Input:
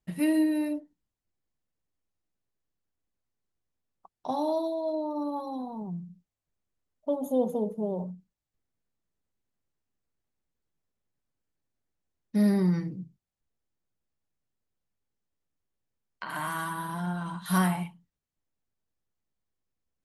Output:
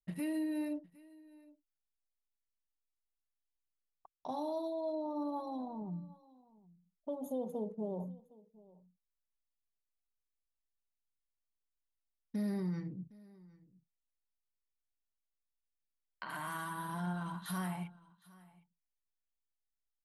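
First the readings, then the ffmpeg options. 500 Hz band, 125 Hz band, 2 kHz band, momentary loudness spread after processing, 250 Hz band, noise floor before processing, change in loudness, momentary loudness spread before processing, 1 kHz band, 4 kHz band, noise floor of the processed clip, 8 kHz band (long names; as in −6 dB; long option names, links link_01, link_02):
−9.5 dB, −10.0 dB, −9.0 dB, 16 LU, −10.0 dB, below −85 dBFS, −10.0 dB, 16 LU, −8.5 dB, −9.0 dB, below −85 dBFS, −9.5 dB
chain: -af "anlmdn=0.00398,alimiter=level_in=0.5dB:limit=-24dB:level=0:latency=1:release=302,volume=-0.5dB,aecho=1:1:761:0.075,volume=-5.5dB"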